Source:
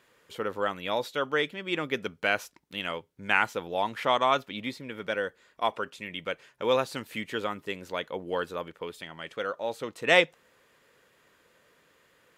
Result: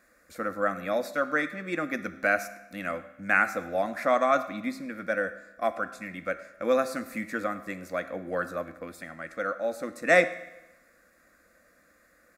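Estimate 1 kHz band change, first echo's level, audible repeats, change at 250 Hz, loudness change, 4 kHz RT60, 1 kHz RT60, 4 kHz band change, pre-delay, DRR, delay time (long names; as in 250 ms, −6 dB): 0.0 dB, −21.0 dB, 1, +3.5 dB, +1.0 dB, 0.90 s, 1.0 s, −12.0 dB, 16 ms, 11.0 dB, 104 ms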